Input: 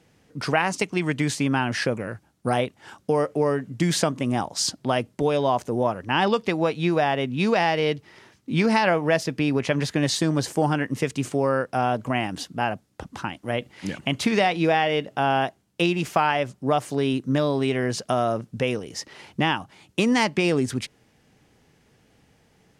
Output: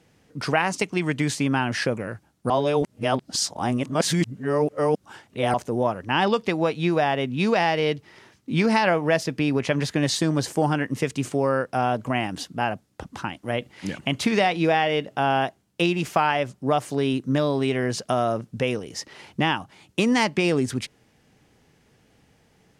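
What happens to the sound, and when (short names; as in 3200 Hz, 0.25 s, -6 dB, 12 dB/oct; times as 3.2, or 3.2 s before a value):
2.5–5.54 reverse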